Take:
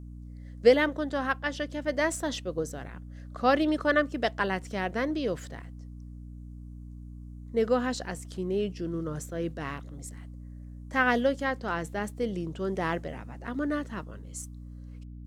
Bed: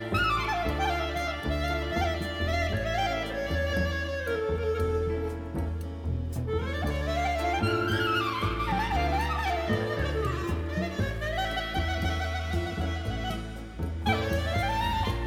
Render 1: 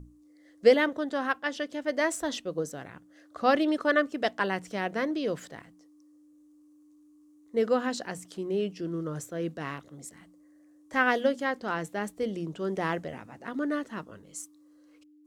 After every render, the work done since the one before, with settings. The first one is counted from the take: notches 60/120/180/240 Hz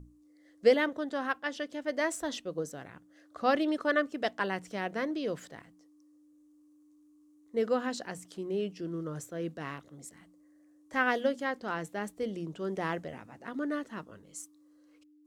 gain -3.5 dB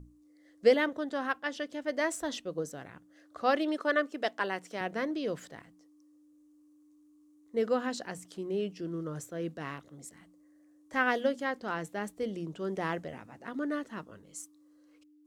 3.42–4.81 HPF 260 Hz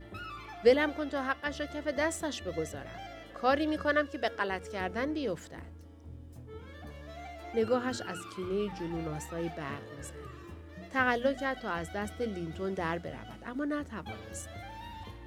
add bed -17 dB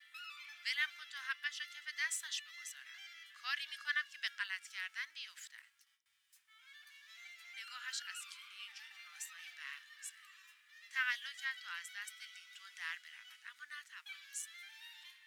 gate with hold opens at -43 dBFS; inverse Chebyshev high-pass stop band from 530 Hz, stop band 60 dB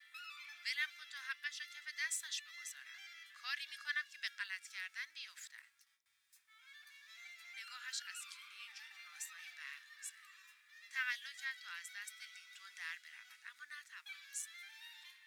notch 3000 Hz, Q 9.2; dynamic EQ 1000 Hz, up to -6 dB, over -53 dBFS, Q 0.88

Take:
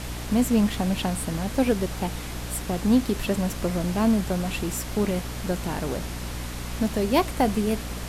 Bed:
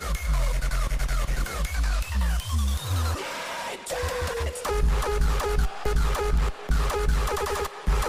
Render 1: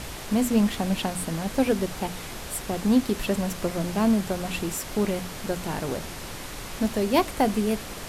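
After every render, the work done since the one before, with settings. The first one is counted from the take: notches 60/120/180/240/300 Hz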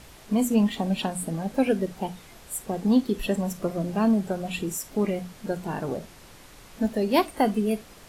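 noise print and reduce 12 dB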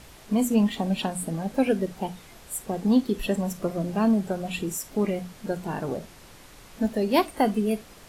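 nothing audible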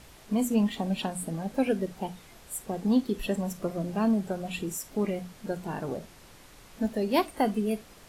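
gain -3.5 dB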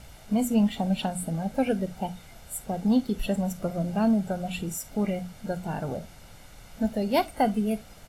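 low shelf 340 Hz +4 dB; comb 1.4 ms, depth 49%

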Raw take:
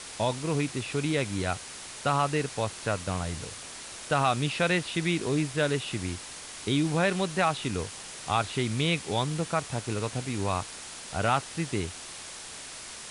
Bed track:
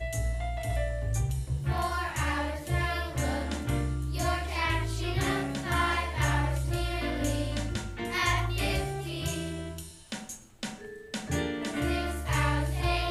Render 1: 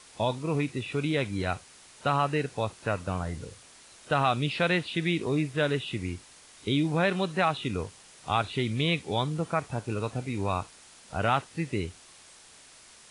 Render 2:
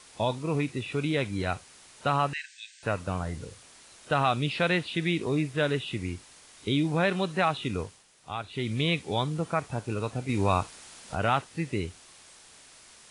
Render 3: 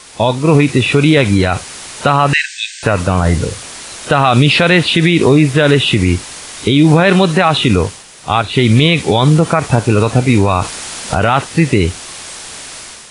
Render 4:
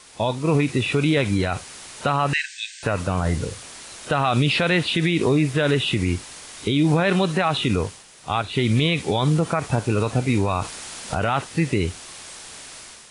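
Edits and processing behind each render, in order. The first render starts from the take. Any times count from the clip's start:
noise print and reduce 11 dB
2.33–2.83 brick-wall FIR band-pass 1500–8900 Hz; 7.8–8.73 dip -8.5 dB, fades 0.26 s; 10.29–11.15 gain +4.5 dB
AGC gain up to 8.5 dB; maximiser +15 dB
gain -10 dB

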